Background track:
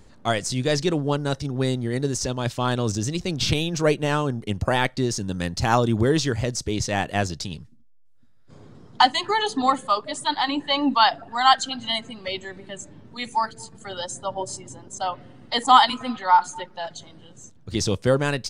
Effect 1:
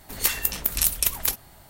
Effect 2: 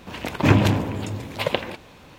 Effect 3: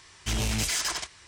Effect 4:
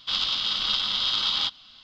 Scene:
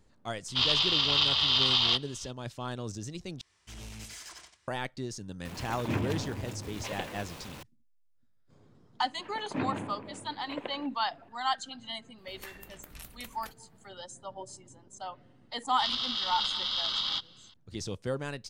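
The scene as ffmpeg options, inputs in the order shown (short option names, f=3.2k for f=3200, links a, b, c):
-filter_complex "[4:a]asplit=2[a][b];[2:a]asplit=2[c][d];[0:a]volume=-13.5dB[e];[a]afreqshift=-120[f];[3:a]aecho=1:1:92:0.422[g];[c]aeval=exprs='val(0)+0.5*0.0596*sgn(val(0))':c=same[h];[d]acrossover=split=150 2700:gain=0.158 1 0.112[i][j][k];[i][j][k]amix=inputs=3:normalize=0[l];[1:a]bass=f=250:g=-2,treble=f=4k:g=-13[m];[b]bandreject=f=2.5k:w=7.7[n];[e]asplit=2[o][p];[o]atrim=end=3.414[q];[g]atrim=end=1.27,asetpts=PTS-STARTPTS,volume=-18dB[r];[p]atrim=start=4.676[s];[f]atrim=end=1.83,asetpts=PTS-STARTPTS,afade=t=in:d=0.004:c=hsin,afade=t=out:st=1.826:d=0.004:c=hsin,adelay=480[t];[h]atrim=end=2.18,asetpts=PTS-STARTPTS,volume=-16.5dB,afade=t=in:d=0.004:c=hsin,afade=t=out:st=2.176:d=0.004:c=hsin,adelay=240345S[u];[l]atrim=end=2.18,asetpts=PTS-STARTPTS,volume=-15dB,afade=t=in:d=0.004:c=hsin,afade=t=out:st=2.176:d=0.004:c=hsin,adelay=9110[v];[m]atrim=end=1.69,asetpts=PTS-STARTPTS,volume=-15.5dB,afade=t=in:d=0.004:c=hsin,afade=t=out:st=1.686:d=0.004:c=hsin,adelay=12180[w];[n]atrim=end=1.83,asetpts=PTS-STARTPTS,volume=-6dB,afade=t=in:d=0.004:c=hsin,afade=t=out:st=1.826:d=0.004:c=hsin,adelay=15710[x];[q][r]acrossfade=d=0.004:c1=hsin:c2=hsin[y];[y][s]acrossfade=d=0.004:c1=hsin:c2=hsin[z];[z][t][u][v][w][x]amix=inputs=6:normalize=0"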